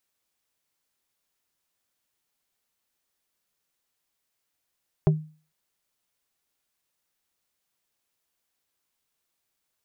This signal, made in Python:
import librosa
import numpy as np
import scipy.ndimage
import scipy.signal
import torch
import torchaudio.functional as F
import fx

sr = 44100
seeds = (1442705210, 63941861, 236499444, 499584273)

y = fx.strike_wood(sr, length_s=0.45, level_db=-13.0, body='plate', hz=155.0, decay_s=0.38, tilt_db=5.5, modes=5)